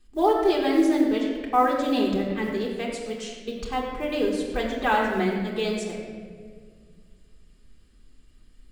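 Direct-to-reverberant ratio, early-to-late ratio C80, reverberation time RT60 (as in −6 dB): −4.5 dB, 3.5 dB, 1.9 s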